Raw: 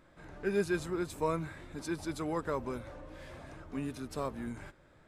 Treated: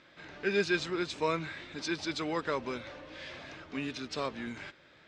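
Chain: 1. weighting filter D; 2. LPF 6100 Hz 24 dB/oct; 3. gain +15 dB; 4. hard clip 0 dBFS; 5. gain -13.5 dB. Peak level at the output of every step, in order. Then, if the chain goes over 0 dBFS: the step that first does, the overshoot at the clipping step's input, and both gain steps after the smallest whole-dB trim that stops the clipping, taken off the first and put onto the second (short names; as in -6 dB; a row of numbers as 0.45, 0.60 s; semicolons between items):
-17.5, -17.5, -2.5, -2.5, -16.0 dBFS; no overload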